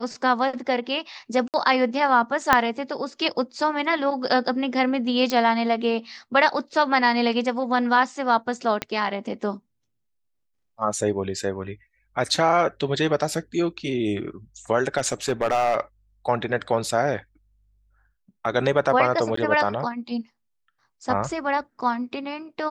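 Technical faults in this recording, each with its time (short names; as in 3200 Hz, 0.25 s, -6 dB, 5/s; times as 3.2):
1.48–1.54 gap 58 ms
2.53 pop -2 dBFS
5.3 pop -11 dBFS
8.82 pop -10 dBFS
14.97–15.76 clipped -16 dBFS
19.36–19.37 gap 14 ms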